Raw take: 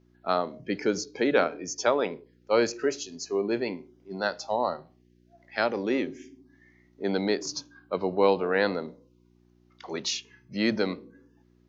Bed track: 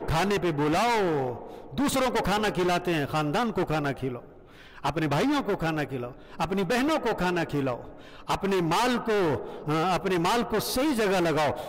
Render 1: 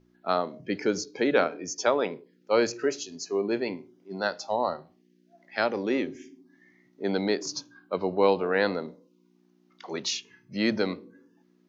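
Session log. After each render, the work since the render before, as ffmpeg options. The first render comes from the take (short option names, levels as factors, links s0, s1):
-af "bandreject=f=60:t=h:w=4,bandreject=f=120:t=h:w=4"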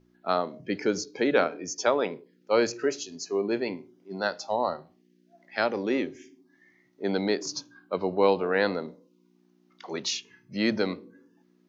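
-filter_complex "[0:a]asettb=1/sr,asplit=3[s0][s1][s2];[s0]atrim=end=6.084[s3];[s1]atrim=start=6.08:end=7.03,asetpts=PTS-STARTPTS,afade=t=in:d=0.004:c=qsin,afade=t=out:st=0.946:d=0.004:c=qsin,equalizer=f=220:t=o:w=1.1:g=-6.5[s4];[s2]atrim=start=7.026[s5];[s3][s4]acrossfade=d=0.004:c1=hsin:c2=qsin[s6];[s6][s5]acrossfade=d=0.004:c1=qsin:c2=hsin"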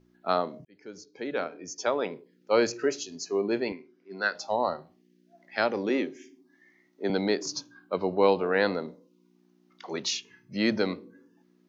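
-filter_complex "[0:a]asettb=1/sr,asplit=3[s0][s1][s2];[s0]atrim=end=3.724[s3];[s1]atrim=start=3.72:end=4.35,asetpts=PTS-STARTPTS,afade=t=in:d=0.004:c=qsin,afade=t=out:st=0.626:d=0.004:c=qsin,highpass=280,equalizer=f=320:t=q:w=4:g=-3,equalizer=f=600:t=q:w=4:g=-7,equalizer=f=850:t=q:w=4:g=-10,equalizer=f=1600:t=q:w=4:g=6,equalizer=f=2300:t=q:w=4:g=6,equalizer=f=3300:t=q:w=4:g=-6,lowpass=f=5200:w=0.5412,lowpass=f=5200:w=1.3066[s4];[s2]atrim=start=4.346[s5];[s3][s4]acrossfade=d=0.004:c1=hsin:c2=qsin[s6];[s6][s5]acrossfade=d=0.004:c1=qsin:c2=hsin,asettb=1/sr,asplit=3[s7][s8][s9];[s7]atrim=end=5.894[s10];[s8]atrim=start=5.89:end=7.1,asetpts=PTS-STARTPTS,afade=t=in:d=0.004:c=qsin,afade=t=out:st=1.206:d=0.004:c=qsin,highpass=f=180:w=0.5412,highpass=f=180:w=1.3066[s11];[s9]atrim=start=7.096[s12];[s10][s11]acrossfade=d=0.004:c1=hsin:c2=qsin[s13];[s13][s12]acrossfade=d=0.004:c1=qsin:c2=hsin,asplit=2[s14][s15];[s14]atrim=end=0.65,asetpts=PTS-STARTPTS,afade=t=out:st=0.646:d=0.004:c=hsin[s16];[s15]atrim=start=0.65,asetpts=PTS-STARTPTS,afade=t=in:d=1.86[s17];[s16][s17]concat=n=2:v=0:a=1"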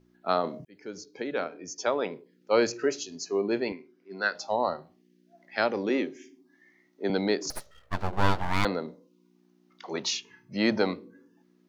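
-filter_complex "[0:a]asettb=1/sr,asplit=3[s0][s1][s2];[s0]atrim=end=7.504[s3];[s1]atrim=start=7.5:end=8.65,asetpts=PTS-STARTPTS,afade=t=in:d=0.004:c=qsin,afade=t=out:st=1.146:d=0.004:c=qsin,aeval=exprs='abs(val(0))':c=same[s4];[s2]atrim=start=8.646[s5];[s3][s4]acrossfade=d=0.004:c1=hsin:c2=qsin[s6];[s6][s5]acrossfade=d=0.004:c1=qsin:c2=hsin,asettb=1/sr,asplit=3[s7][s8][s9];[s7]atrim=end=9.954[s10];[s8]atrim=start=9.95:end=10.91,asetpts=PTS-STARTPTS,afade=t=in:d=0.004:c=qsin,afade=t=out:st=0.956:d=0.004:c=qsin,equalizer=f=850:t=o:w=0.91:g=7.5[s11];[s9]atrim=start=10.906[s12];[s10][s11]acrossfade=d=0.004:c1=hsin:c2=qsin[s13];[s13][s12]acrossfade=d=0.004:c1=qsin:c2=hsin,asplit=3[s14][s15][s16];[s14]atrim=end=0.442[s17];[s15]atrim=start=0.438:end=1.222,asetpts=PTS-STARTPTS,volume=1.58[s18];[s16]atrim=start=1.218[s19];[s17][s18]acrossfade=d=0.004:c1=hsin:c2=hsin[s20];[s20][s19]acrossfade=d=0.004:c1=hsin:c2=hsin"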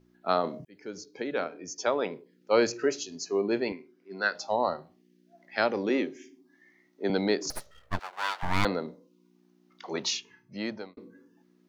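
-filter_complex "[0:a]asettb=1/sr,asplit=3[s0][s1][s2];[s0]atrim=end=7.994[s3];[s1]atrim=start=7.99:end=8.43,asetpts=PTS-STARTPTS,afade=t=in:d=0.004:c=qsin,afade=t=out:st=0.436:d=0.004:c=qsin,highpass=1200[s4];[s2]atrim=start=8.426[s5];[s3][s4]acrossfade=d=0.004:c1=hsin:c2=qsin[s6];[s6][s5]acrossfade=d=0.004:c1=qsin:c2=hsin,asplit=2[s7][s8];[s7]atrim=end=10.97,asetpts=PTS-STARTPTS,afade=t=out:st=10.08:d=0.89[s9];[s8]atrim=start=10.97,asetpts=PTS-STARTPTS,afade=t=in:d=0.004:c=hsin[s10];[s9][s10]concat=n=2:v=0:a=1"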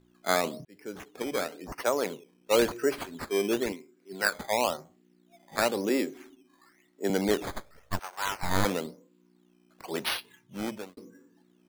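-af "acrusher=samples=11:mix=1:aa=0.000001:lfo=1:lforange=11:lforate=0.96"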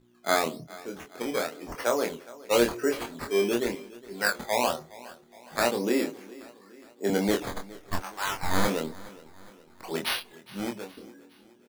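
-filter_complex "[0:a]asplit=2[s0][s1];[s1]adelay=25,volume=0.631[s2];[s0][s2]amix=inputs=2:normalize=0,aecho=1:1:414|828|1242|1656:0.1|0.05|0.025|0.0125"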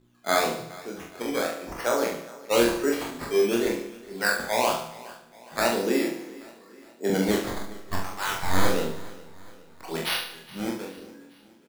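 -filter_complex "[0:a]asplit=2[s0][s1];[s1]adelay=43,volume=0.668[s2];[s0][s2]amix=inputs=2:normalize=0,aecho=1:1:74|148|222|296|370|444:0.316|0.161|0.0823|0.0419|0.0214|0.0109"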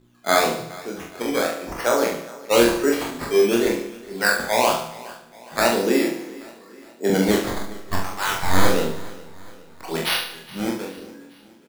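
-af "volume=1.78"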